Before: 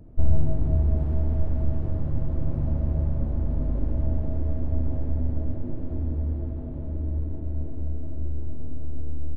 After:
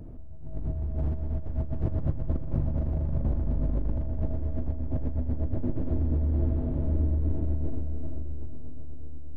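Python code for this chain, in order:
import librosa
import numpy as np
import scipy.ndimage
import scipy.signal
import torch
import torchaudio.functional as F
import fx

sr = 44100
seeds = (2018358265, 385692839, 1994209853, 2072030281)

y = fx.over_compress(x, sr, threshold_db=-27.0, ratio=-1.0)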